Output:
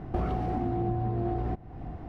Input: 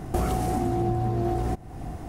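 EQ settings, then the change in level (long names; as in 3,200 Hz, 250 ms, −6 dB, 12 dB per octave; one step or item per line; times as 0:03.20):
high-frequency loss of the air 320 metres
−3.5 dB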